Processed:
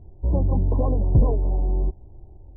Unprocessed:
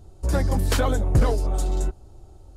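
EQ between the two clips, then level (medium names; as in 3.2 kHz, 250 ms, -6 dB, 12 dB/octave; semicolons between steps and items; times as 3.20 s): brick-wall FIR low-pass 1.1 kHz; tilt EQ -3 dB/octave; bass shelf 68 Hz -9.5 dB; -5.0 dB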